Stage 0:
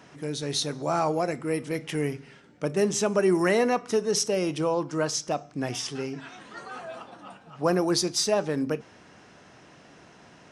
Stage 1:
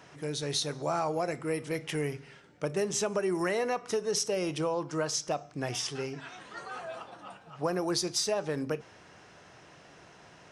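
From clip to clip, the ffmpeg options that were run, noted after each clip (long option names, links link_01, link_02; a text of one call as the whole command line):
ffmpeg -i in.wav -af "equalizer=frequency=240:width_type=o:width=0.7:gain=-7.5,acompressor=threshold=-25dB:ratio=6,volume=-1dB" out.wav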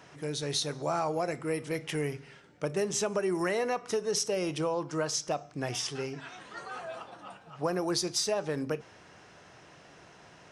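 ffmpeg -i in.wav -af anull out.wav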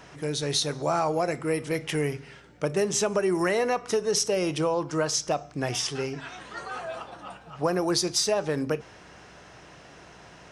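ffmpeg -i in.wav -af "aeval=exprs='val(0)+0.000501*(sin(2*PI*60*n/s)+sin(2*PI*2*60*n/s)/2+sin(2*PI*3*60*n/s)/3+sin(2*PI*4*60*n/s)/4+sin(2*PI*5*60*n/s)/5)':channel_layout=same,volume=5dB" out.wav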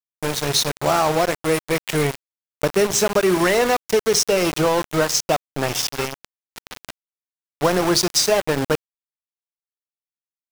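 ffmpeg -i in.wav -af "aeval=exprs='val(0)*gte(abs(val(0)),0.0447)':channel_layout=same,volume=7.5dB" out.wav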